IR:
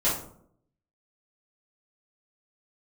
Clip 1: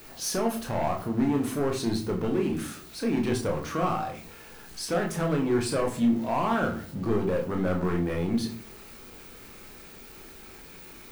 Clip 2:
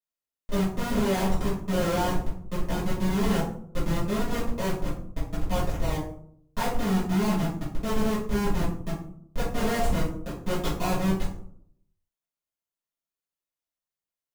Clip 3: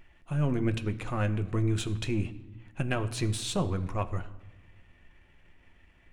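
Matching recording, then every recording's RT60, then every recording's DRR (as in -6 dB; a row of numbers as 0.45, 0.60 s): 2; 0.45, 0.65, 1.1 s; 1.0, -11.0, 7.5 dB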